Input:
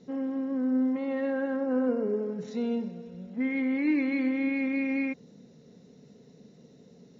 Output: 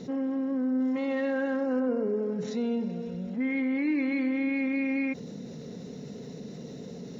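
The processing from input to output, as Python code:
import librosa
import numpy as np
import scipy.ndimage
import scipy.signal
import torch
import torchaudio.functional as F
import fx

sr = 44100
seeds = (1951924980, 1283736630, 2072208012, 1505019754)

y = fx.high_shelf(x, sr, hz=2700.0, db=10.5, at=(0.8, 1.8))
y = fx.env_flatten(y, sr, amount_pct=50)
y = y * 10.0 ** (-2.5 / 20.0)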